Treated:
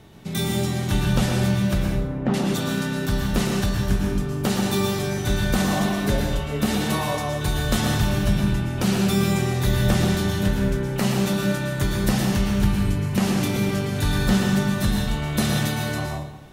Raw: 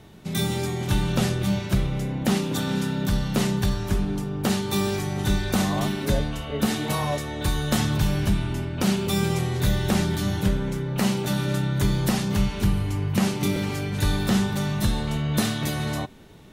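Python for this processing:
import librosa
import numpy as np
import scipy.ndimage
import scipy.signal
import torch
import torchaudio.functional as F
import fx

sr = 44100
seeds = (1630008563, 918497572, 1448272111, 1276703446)

y = fx.lowpass(x, sr, hz=1500.0, slope=12, at=(1.83, 2.34))
y = fx.rev_plate(y, sr, seeds[0], rt60_s=0.82, hf_ratio=0.7, predelay_ms=100, drr_db=1.0)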